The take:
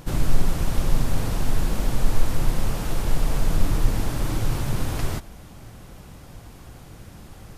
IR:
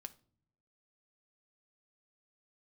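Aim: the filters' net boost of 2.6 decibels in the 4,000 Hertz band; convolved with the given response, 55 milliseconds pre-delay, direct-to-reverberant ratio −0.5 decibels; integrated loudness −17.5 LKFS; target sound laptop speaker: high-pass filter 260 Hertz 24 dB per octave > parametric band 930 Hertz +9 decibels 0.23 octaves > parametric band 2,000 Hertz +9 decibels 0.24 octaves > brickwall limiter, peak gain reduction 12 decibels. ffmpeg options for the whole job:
-filter_complex "[0:a]equalizer=frequency=4000:width_type=o:gain=3,asplit=2[link_01][link_02];[1:a]atrim=start_sample=2205,adelay=55[link_03];[link_02][link_03]afir=irnorm=-1:irlink=0,volume=6dB[link_04];[link_01][link_04]amix=inputs=2:normalize=0,highpass=frequency=260:width=0.5412,highpass=frequency=260:width=1.3066,equalizer=frequency=930:width_type=o:width=0.23:gain=9,equalizer=frequency=2000:width_type=o:width=0.24:gain=9,volume=20dB,alimiter=limit=-8.5dB:level=0:latency=1"

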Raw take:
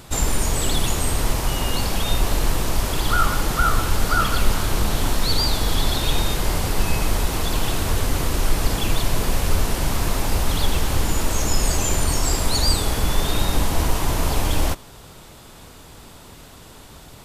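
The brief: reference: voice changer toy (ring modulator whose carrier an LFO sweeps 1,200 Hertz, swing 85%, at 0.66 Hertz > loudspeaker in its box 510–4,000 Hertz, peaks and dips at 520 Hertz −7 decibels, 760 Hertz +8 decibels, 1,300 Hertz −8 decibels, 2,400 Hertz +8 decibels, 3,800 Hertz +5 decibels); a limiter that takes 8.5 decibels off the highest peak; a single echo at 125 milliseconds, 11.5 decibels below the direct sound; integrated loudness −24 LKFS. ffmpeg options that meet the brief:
ffmpeg -i in.wav -af "alimiter=limit=-12dB:level=0:latency=1,aecho=1:1:125:0.266,aeval=exprs='val(0)*sin(2*PI*1200*n/s+1200*0.85/0.66*sin(2*PI*0.66*n/s))':channel_layout=same,highpass=510,equalizer=frequency=520:width_type=q:width=4:gain=-7,equalizer=frequency=760:width_type=q:width=4:gain=8,equalizer=frequency=1300:width_type=q:width=4:gain=-8,equalizer=frequency=2400:width_type=q:width=4:gain=8,equalizer=frequency=3800:width_type=q:width=4:gain=5,lowpass=frequency=4000:width=0.5412,lowpass=frequency=4000:width=1.3066,volume=-3.5dB" out.wav

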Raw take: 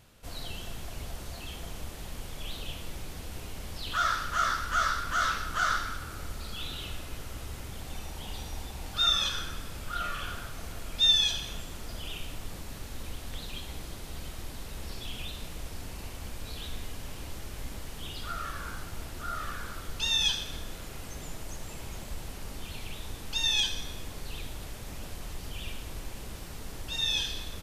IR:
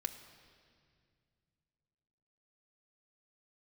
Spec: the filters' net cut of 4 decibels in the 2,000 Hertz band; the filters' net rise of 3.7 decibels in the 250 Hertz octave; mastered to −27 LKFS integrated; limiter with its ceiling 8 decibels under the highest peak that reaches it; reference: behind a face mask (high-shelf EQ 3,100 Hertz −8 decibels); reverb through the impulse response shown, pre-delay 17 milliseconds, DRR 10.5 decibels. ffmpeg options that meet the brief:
-filter_complex "[0:a]equalizer=frequency=250:width_type=o:gain=5,equalizer=frequency=2000:width_type=o:gain=-3.5,alimiter=limit=-21.5dB:level=0:latency=1,asplit=2[link_01][link_02];[1:a]atrim=start_sample=2205,adelay=17[link_03];[link_02][link_03]afir=irnorm=-1:irlink=0,volume=-10.5dB[link_04];[link_01][link_04]amix=inputs=2:normalize=0,highshelf=frequency=3100:gain=-8,volume=11.5dB"

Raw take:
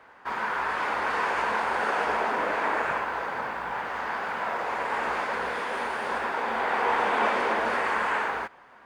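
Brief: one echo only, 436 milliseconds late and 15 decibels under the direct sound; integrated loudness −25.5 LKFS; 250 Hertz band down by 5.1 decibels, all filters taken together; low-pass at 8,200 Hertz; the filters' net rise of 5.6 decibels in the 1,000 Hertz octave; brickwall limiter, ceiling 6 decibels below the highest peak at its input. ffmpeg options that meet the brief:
ffmpeg -i in.wav -af "lowpass=8200,equalizer=frequency=250:width_type=o:gain=-7.5,equalizer=frequency=1000:width_type=o:gain=7,alimiter=limit=-14.5dB:level=0:latency=1,aecho=1:1:436:0.178,volume=-1dB" out.wav

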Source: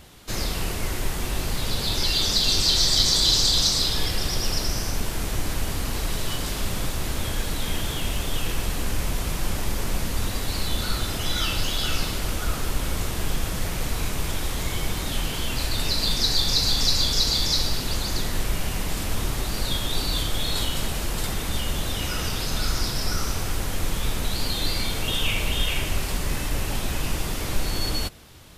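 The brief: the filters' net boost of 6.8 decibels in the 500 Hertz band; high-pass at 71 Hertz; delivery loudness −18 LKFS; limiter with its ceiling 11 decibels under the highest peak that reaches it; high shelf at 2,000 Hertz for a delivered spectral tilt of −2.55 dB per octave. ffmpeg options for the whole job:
ffmpeg -i in.wav -af "highpass=71,equalizer=frequency=500:width_type=o:gain=8,highshelf=frequency=2000:gain=6,volume=5dB,alimiter=limit=-7.5dB:level=0:latency=1" out.wav

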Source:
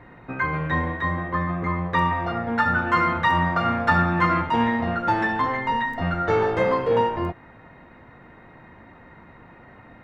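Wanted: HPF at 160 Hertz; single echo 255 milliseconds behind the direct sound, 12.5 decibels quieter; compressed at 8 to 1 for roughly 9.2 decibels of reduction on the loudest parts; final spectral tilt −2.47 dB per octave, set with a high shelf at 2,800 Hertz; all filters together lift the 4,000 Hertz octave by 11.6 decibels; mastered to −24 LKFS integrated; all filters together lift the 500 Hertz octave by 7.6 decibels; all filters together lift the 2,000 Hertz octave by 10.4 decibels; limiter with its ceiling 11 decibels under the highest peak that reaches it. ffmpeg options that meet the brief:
ffmpeg -i in.wav -af "highpass=160,equalizer=frequency=500:width_type=o:gain=8,equalizer=frequency=2000:width_type=o:gain=8,highshelf=frequency=2800:gain=7,equalizer=frequency=4000:width_type=o:gain=6.5,acompressor=threshold=-18dB:ratio=8,alimiter=limit=-18dB:level=0:latency=1,aecho=1:1:255:0.237,volume=1dB" out.wav

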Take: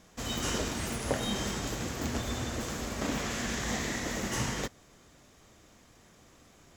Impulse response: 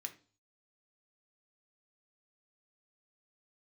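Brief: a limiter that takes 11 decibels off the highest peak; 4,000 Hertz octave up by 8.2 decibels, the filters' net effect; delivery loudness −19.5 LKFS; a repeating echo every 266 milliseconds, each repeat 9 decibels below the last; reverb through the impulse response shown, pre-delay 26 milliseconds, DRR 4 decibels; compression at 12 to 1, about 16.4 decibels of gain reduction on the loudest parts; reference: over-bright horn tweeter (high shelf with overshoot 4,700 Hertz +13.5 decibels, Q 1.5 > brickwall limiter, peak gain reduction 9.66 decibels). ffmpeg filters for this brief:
-filter_complex "[0:a]equalizer=frequency=4000:width_type=o:gain=5.5,acompressor=threshold=-41dB:ratio=12,alimiter=level_in=14.5dB:limit=-24dB:level=0:latency=1,volume=-14.5dB,aecho=1:1:266|532|798|1064:0.355|0.124|0.0435|0.0152,asplit=2[link_01][link_02];[1:a]atrim=start_sample=2205,adelay=26[link_03];[link_02][link_03]afir=irnorm=-1:irlink=0,volume=-1dB[link_04];[link_01][link_04]amix=inputs=2:normalize=0,highshelf=frequency=4700:width_type=q:width=1.5:gain=13.5,volume=22.5dB,alimiter=limit=-12.5dB:level=0:latency=1"

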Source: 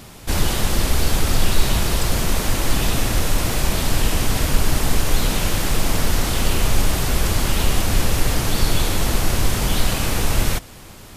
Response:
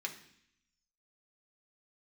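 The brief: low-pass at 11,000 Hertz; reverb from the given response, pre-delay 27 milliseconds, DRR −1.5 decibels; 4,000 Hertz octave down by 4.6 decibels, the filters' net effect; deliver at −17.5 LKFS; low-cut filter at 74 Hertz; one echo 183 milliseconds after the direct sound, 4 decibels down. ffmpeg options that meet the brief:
-filter_complex "[0:a]highpass=74,lowpass=11000,equalizer=frequency=4000:width_type=o:gain=-6,aecho=1:1:183:0.631,asplit=2[link_01][link_02];[1:a]atrim=start_sample=2205,adelay=27[link_03];[link_02][link_03]afir=irnorm=-1:irlink=0,volume=0.5dB[link_04];[link_01][link_04]amix=inputs=2:normalize=0,volume=2.5dB"

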